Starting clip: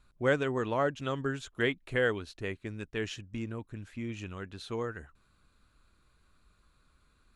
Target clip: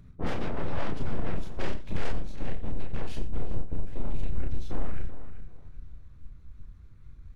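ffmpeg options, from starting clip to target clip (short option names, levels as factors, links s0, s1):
-filter_complex "[0:a]bass=f=250:g=15,treble=f=4000:g=-6,asoftclip=type=tanh:threshold=0.0531,afftfilt=real='hypot(re,im)*cos(2*PI*random(0))':imag='hypot(re,im)*sin(2*PI*random(1))':win_size=512:overlap=0.75,aeval=exprs='0.0794*(cos(1*acos(clip(val(0)/0.0794,-1,1)))-cos(1*PI/2))+0.0178*(cos(8*acos(clip(val(0)/0.0794,-1,1)))-cos(8*PI/2))':c=same,asubboost=boost=4.5:cutoff=61,acompressor=threshold=0.0316:ratio=5,asplit=2[s0][s1];[s1]adelay=34,volume=0.708[s2];[s0][s2]amix=inputs=2:normalize=0,asplit=2[s3][s4];[s4]adelay=388,lowpass=f=2900:p=1,volume=0.266,asplit=2[s5][s6];[s6]adelay=388,lowpass=f=2900:p=1,volume=0.28,asplit=2[s7][s8];[s8]adelay=388,lowpass=f=2900:p=1,volume=0.28[s9];[s5][s7][s9]amix=inputs=3:normalize=0[s10];[s3][s10]amix=inputs=2:normalize=0,acompressor=mode=upward:threshold=0.00316:ratio=2.5,asplit=2[s11][s12];[s12]aecho=0:1:87:0.211[s13];[s11][s13]amix=inputs=2:normalize=0,asplit=4[s14][s15][s16][s17];[s15]asetrate=37084,aresample=44100,atempo=1.18921,volume=0.501[s18];[s16]asetrate=55563,aresample=44100,atempo=0.793701,volume=0.2[s19];[s17]asetrate=66075,aresample=44100,atempo=0.66742,volume=0.708[s20];[s14][s18][s19][s20]amix=inputs=4:normalize=0"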